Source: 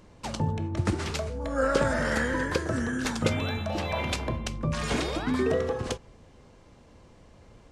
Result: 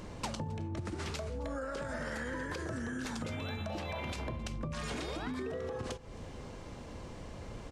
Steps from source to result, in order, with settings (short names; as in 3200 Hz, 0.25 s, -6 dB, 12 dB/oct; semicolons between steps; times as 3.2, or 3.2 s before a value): limiter -22 dBFS, peak gain reduction 11 dB; compressor 16:1, threshold -43 dBFS, peak gain reduction 17.5 dB; on a send: echo 0.266 s -22.5 dB; on the sum: gain +8 dB